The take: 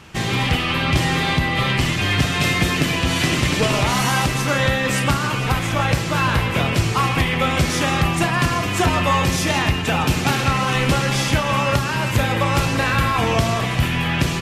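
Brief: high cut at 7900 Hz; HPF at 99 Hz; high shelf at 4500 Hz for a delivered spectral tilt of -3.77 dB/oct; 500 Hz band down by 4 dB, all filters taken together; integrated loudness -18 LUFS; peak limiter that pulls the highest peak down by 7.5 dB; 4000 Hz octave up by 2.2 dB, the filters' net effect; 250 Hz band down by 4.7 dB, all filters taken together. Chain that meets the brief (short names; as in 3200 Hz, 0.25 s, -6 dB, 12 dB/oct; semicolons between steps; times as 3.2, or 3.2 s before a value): HPF 99 Hz; LPF 7900 Hz; bell 250 Hz -6 dB; bell 500 Hz -3.5 dB; bell 4000 Hz +5.5 dB; high shelf 4500 Hz -4.5 dB; gain +3.5 dB; limiter -9.5 dBFS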